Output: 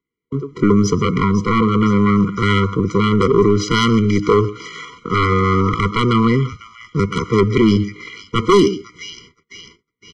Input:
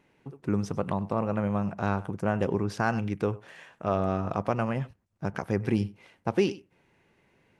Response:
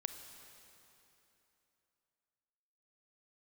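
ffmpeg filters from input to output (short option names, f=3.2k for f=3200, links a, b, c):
-filter_complex "[0:a]acrossover=split=200|1800[a][b][c];[a]asoftclip=type=tanh:threshold=-36.5dB[d];[c]aecho=1:1:379|758|1137|1516|1895|2274:0.282|0.152|0.0822|0.0444|0.024|0.0129[e];[d][b][e]amix=inputs=3:normalize=0,aresample=16000,aresample=44100,aeval=exprs='0.251*sin(PI/2*3.16*val(0)/0.251)':c=same,equalizer=f=140:t=o:w=1.9:g=-3,bandreject=f=311:t=h:w=4,bandreject=f=622:t=h:w=4,bandreject=f=933:t=h:w=4,bandreject=f=1.244k:t=h:w=4,bandreject=f=1.555k:t=h:w=4,bandreject=f=1.866k:t=h:w=4,bandreject=f=2.177k:t=h:w=4,bandreject=f=2.488k:t=h:w=4,bandreject=f=2.799k:t=h:w=4,bandreject=f=3.11k:t=h:w=4,bandreject=f=3.421k:t=h:w=4,bandreject=f=3.732k:t=h:w=4,bandreject=f=4.043k:t=h:w=4,bandreject=f=4.354k:t=h:w=4,bandreject=f=4.665k:t=h:w=4,bandreject=f=4.976k:t=h:w=4,bandreject=f=5.287k:t=h:w=4,bandreject=f=5.598k:t=h:w=4,bandreject=f=5.909k:t=h:w=4,bandreject=f=6.22k:t=h:w=4,bandreject=f=6.531k:t=h:w=4,bandreject=f=6.842k:t=h:w=4,bandreject=f=7.153k:t=h:w=4,bandreject=f=7.464k:t=h:w=4,agate=range=-38dB:threshold=-46dB:ratio=16:detection=peak,atempo=0.75,acontrast=52,afftfilt=real='re*eq(mod(floor(b*sr/1024/480),2),0)':imag='im*eq(mod(floor(b*sr/1024/480),2),0)':win_size=1024:overlap=0.75,volume=2dB"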